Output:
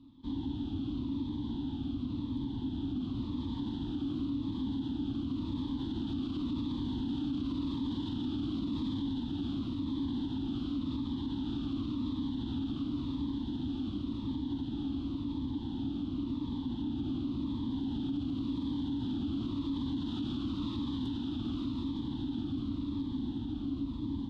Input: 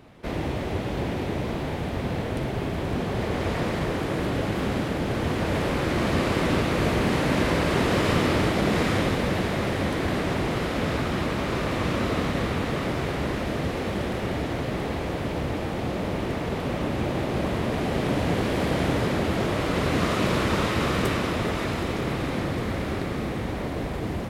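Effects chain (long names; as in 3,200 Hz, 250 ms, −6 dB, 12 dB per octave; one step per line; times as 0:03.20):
drawn EQ curve 110 Hz 0 dB, 180 Hz −6 dB, 280 Hz +14 dB, 420 Hz −20 dB, 610 Hz −26 dB, 900 Hz −2 dB, 2,200 Hz −26 dB, 3,400 Hz +5 dB, 5,400 Hz −12 dB, 12,000 Hz −28 dB
brickwall limiter −18.5 dBFS, peak gain reduction 11.5 dB
phaser whose notches keep moving one way falling 0.92 Hz
level −8.5 dB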